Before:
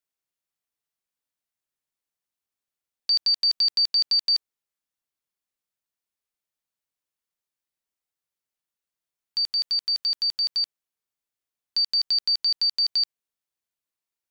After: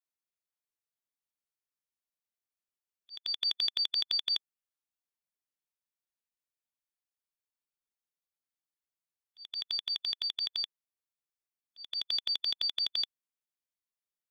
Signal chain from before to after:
volume swells 322 ms
formants moved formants −5 semitones
level −8.5 dB

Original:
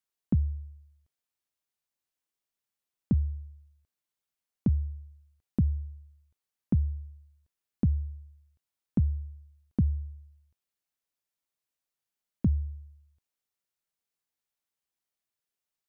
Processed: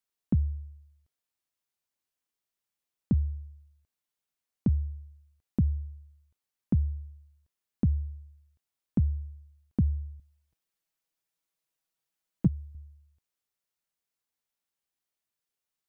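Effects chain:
0:10.19–0:12.75: comb filter 6.2 ms, depth 76%

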